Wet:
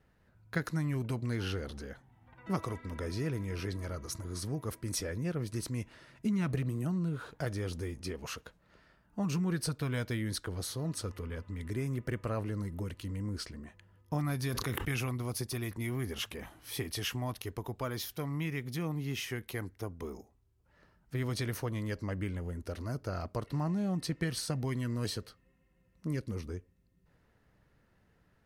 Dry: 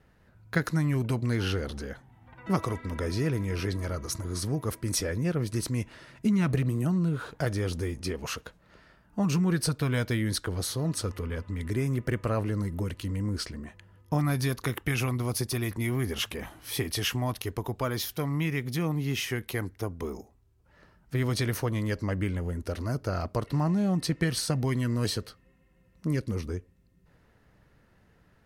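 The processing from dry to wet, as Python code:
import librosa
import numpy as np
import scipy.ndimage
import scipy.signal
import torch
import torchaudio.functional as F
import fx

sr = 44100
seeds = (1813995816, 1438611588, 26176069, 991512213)

y = fx.sustainer(x, sr, db_per_s=27.0, at=(14.52, 15.14), fade=0.02)
y = y * 10.0 ** (-6.5 / 20.0)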